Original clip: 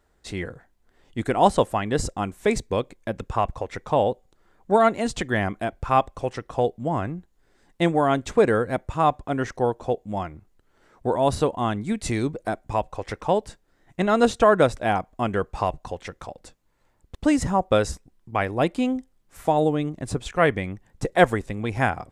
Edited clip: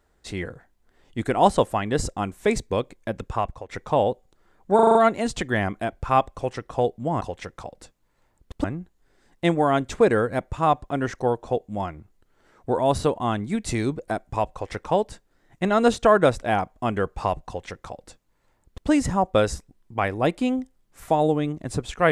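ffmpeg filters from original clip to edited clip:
ffmpeg -i in.wav -filter_complex "[0:a]asplit=9[link_01][link_02][link_03][link_04][link_05][link_06][link_07][link_08][link_09];[link_01]atrim=end=3.69,asetpts=PTS-STARTPTS,afade=type=out:start_time=3.11:duration=0.58:curve=qsin:silence=0.281838[link_10];[link_02]atrim=start=3.69:end=4.792,asetpts=PTS-STARTPTS,afade=type=in:duration=0.004:curve=hsin:silence=0.281838[link_11];[link_03]atrim=start=4.748:end=4.792[link_12];[link_04]atrim=start=4.748:end=4.792[link_13];[link_05]atrim=start=4.748:end=4.792[link_14];[link_06]atrim=start=4.748:end=4.792[link_15];[link_07]atrim=start=4.748:end=7.012[link_16];[link_08]atrim=start=15.838:end=17.272[link_17];[link_09]atrim=start=7.008[link_18];[link_10][link_11]concat=n=2:v=0:a=1[link_19];[link_19][link_12]acrossfade=duration=0.004:curve1=hsin:curve2=hsin[link_20];[link_20][link_13]acrossfade=duration=0.004:curve1=hsin:curve2=hsin[link_21];[link_21][link_14]acrossfade=duration=0.004:curve1=hsin:curve2=hsin[link_22];[link_22][link_15]acrossfade=duration=0.004:curve1=hsin:curve2=hsin[link_23];[link_23][link_16]acrossfade=duration=0.004:curve1=hsin:curve2=hsin[link_24];[link_24][link_17]acrossfade=duration=0.004:curve1=hsin:curve2=hsin[link_25];[link_25][link_18]acrossfade=duration=0.004:curve1=hsin:curve2=hsin" out.wav

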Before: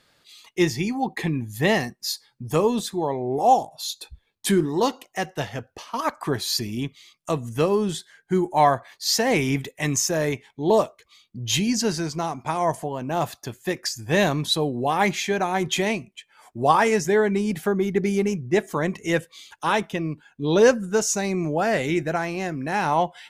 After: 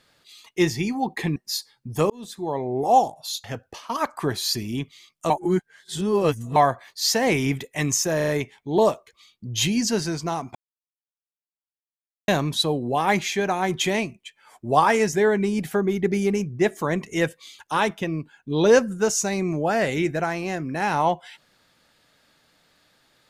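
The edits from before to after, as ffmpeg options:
ffmpeg -i in.wav -filter_complex "[0:a]asplit=11[link_01][link_02][link_03][link_04][link_05][link_06][link_07][link_08][link_09][link_10][link_11];[link_01]atrim=end=1.362[link_12];[link_02]atrim=start=1.908:end=2.65,asetpts=PTS-STARTPTS,afade=type=out:start_time=0.738:duration=0.004:curve=hsin[link_13];[link_03]atrim=start=2.65:end=3.992,asetpts=PTS-STARTPTS,afade=type=in:duration=0.52[link_14];[link_04]atrim=start=5.478:end=7.342[link_15];[link_05]atrim=start=7.338:end=8.602,asetpts=PTS-STARTPTS,areverse[link_16];[link_06]atrim=start=8.598:end=10.242[link_17];[link_07]atrim=start=10.198:end=10.242[link_18];[link_08]atrim=start=10.198:end=10.242[link_19];[link_09]atrim=start=10.198:end=12.47,asetpts=PTS-STARTPTS,afade=type=out:start_time=2.268:duration=0.004:curve=hsin[link_20];[link_10]atrim=start=12.47:end=14.2,asetpts=PTS-STARTPTS,volume=0[link_21];[link_11]atrim=start=14.2,asetpts=PTS-STARTPTS,afade=type=in:duration=0.004:curve=hsin[link_22];[link_13][link_14]concat=n=2:v=0:a=1[link_23];[link_12][link_23]acrossfade=duration=0.004:curve1=hsin:curve2=hsin[link_24];[link_24][link_15]acrossfade=duration=0.004:curve1=hsin:curve2=hsin[link_25];[link_25][link_16]acrossfade=duration=0.004:curve1=hsin:curve2=hsin[link_26];[link_26][link_17]acrossfade=duration=0.004:curve1=hsin:curve2=hsin[link_27];[link_27][link_18]acrossfade=duration=0.004:curve1=hsin:curve2=hsin[link_28];[link_28][link_19]acrossfade=duration=0.004:curve1=hsin:curve2=hsin[link_29];[link_20][link_21][link_22]concat=n=3:v=0:a=1[link_30];[link_29][link_30]acrossfade=duration=0.004:curve1=hsin:curve2=hsin" out.wav

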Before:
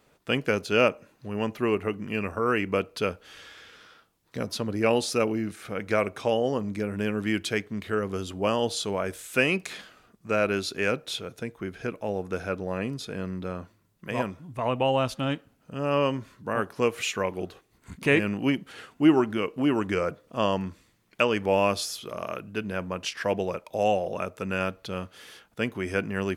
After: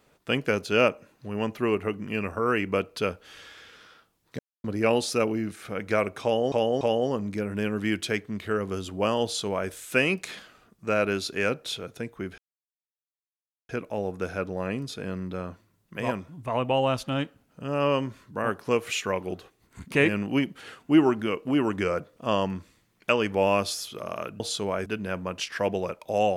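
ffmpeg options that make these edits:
ffmpeg -i in.wav -filter_complex "[0:a]asplit=8[link_01][link_02][link_03][link_04][link_05][link_06][link_07][link_08];[link_01]atrim=end=4.39,asetpts=PTS-STARTPTS,afade=type=out:start_time=4.386:duration=0.004:curve=hsin[link_09];[link_02]atrim=start=4.39:end=4.64,asetpts=PTS-STARTPTS,volume=0[link_10];[link_03]atrim=start=4.64:end=6.522,asetpts=PTS-STARTPTS,afade=type=in:duration=0.004:curve=hsin[link_11];[link_04]atrim=start=6.228:end=6.522[link_12];[link_05]atrim=start=6.228:end=11.8,asetpts=PTS-STARTPTS,afade=type=out:start_time=5.568:duration=0.004:curve=hsin,apad=pad_dur=1.31[link_13];[link_06]atrim=start=11.8:end=22.512,asetpts=PTS-STARTPTS,afade=type=in:duration=0.004:curve=hsin[link_14];[link_07]atrim=start=8.658:end=9.122[link_15];[link_08]atrim=start=22.508[link_16];[link_09][link_10][link_11]concat=n=3:v=0:a=1[link_17];[link_17][link_12]acrossfade=duration=0.004:curve1=hsin:curve2=hsin[link_18];[link_13][link_14]concat=n=2:v=0:a=1[link_19];[link_18][link_19]acrossfade=duration=0.004:curve1=hsin:curve2=hsin[link_20];[link_20][link_15]acrossfade=duration=0.004:curve1=hsin:curve2=hsin[link_21];[link_21][link_16]acrossfade=duration=0.004:curve1=hsin:curve2=hsin" out.wav

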